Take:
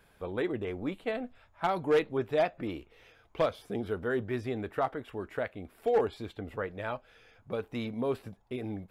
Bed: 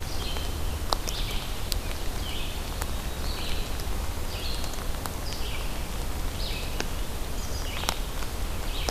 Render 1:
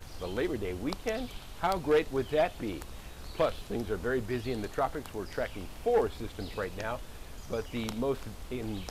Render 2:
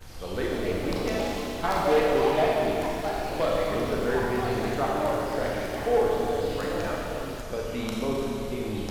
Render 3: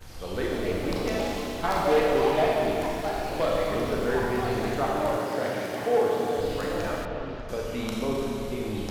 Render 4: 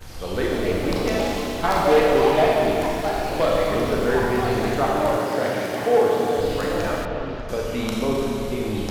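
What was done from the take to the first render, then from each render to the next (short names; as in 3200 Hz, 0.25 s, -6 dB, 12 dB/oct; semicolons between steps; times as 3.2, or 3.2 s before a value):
add bed -13.5 dB
Schroeder reverb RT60 3.1 s, combs from 29 ms, DRR -3.5 dB; echoes that change speed 0.343 s, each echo +4 st, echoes 2, each echo -6 dB
5.17–6.38 HPF 110 Hz 24 dB/oct; 7.05–7.49 air absorption 230 m
gain +5.5 dB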